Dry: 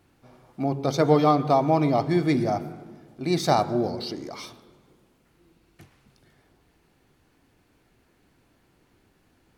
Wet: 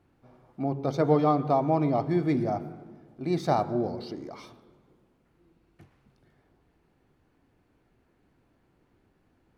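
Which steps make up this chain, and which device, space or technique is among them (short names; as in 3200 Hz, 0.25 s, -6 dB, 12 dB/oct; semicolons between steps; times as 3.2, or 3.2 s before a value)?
through cloth (high shelf 2600 Hz -12 dB); gain -3 dB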